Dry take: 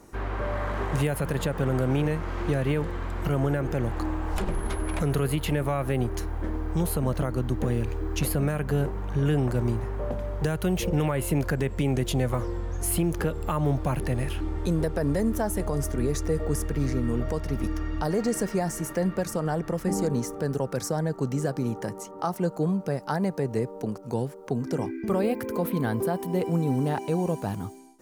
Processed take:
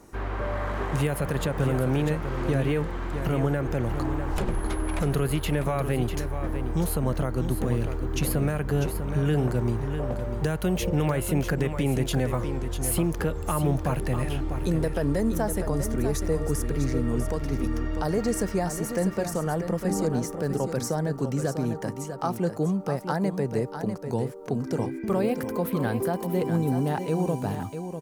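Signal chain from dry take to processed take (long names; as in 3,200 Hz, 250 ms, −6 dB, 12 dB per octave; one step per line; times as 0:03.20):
single-tap delay 647 ms −8.5 dB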